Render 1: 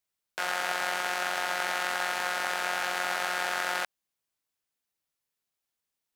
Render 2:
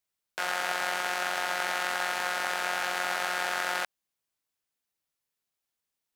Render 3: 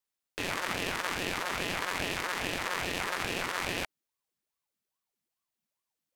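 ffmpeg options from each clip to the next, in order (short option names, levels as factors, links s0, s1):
-af anull
-af "asubboost=boost=9:cutoff=58,aeval=exprs='val(0)*sin(2*PI*660*n/s+660*0.75/2.4*sin(2*PI*2.4*n/s))':c=same"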